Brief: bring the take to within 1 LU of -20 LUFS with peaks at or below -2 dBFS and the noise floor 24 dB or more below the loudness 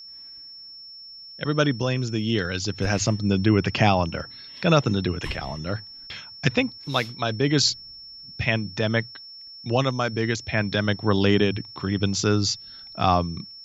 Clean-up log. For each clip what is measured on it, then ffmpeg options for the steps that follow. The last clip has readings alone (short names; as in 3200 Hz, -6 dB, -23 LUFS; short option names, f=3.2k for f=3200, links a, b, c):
steady tone 5400 Hz; tone level -40 dBFS; loudness -24.0 LUFS; peak -3.5 dBFS; loudness target -20.0 LUFS
-> -af "bandreject=f=5.4k:w=30"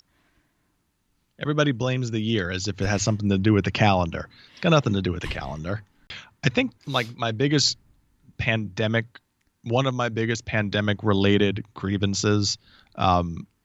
steady tone none; loudness -24.0 LUFS; peak -3.5 dBFS; loudness target -20.0 LUFS
-> -af "volume=4dB,alimiter=limit=-2dB:level=0:latency=1"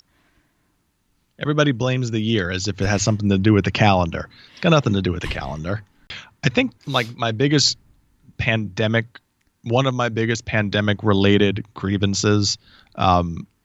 loudness -20.0 LUFS; peak -2.0 dBFS; noise floor -67 dBFS